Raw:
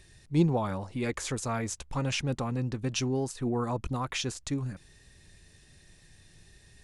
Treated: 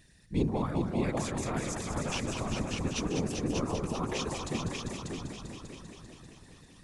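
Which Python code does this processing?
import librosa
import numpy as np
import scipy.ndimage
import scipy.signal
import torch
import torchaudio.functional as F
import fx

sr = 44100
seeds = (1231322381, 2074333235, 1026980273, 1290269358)

y = fx.echo_heads(x, sr, ms=197, heads='all three', feedback_pct=57, wet_db=-7.0)
y = fx.whisperise(y, sr, seeds[0])
y = y * 10.0 ** (-4.5 / 20.0)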